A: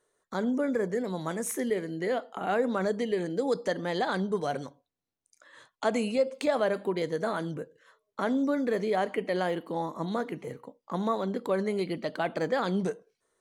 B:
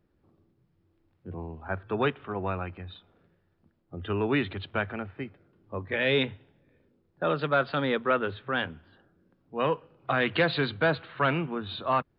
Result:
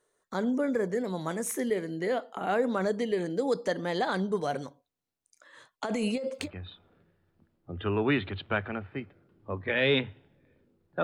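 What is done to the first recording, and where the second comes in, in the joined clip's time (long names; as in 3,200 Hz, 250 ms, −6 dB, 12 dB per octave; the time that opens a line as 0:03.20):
A
0:05.85–0:06.51: compressor whose output falls as the input rises −30 dBFS, ratio −1
0:06.45: continue with B from 0:02.69, crossfade 0.12 s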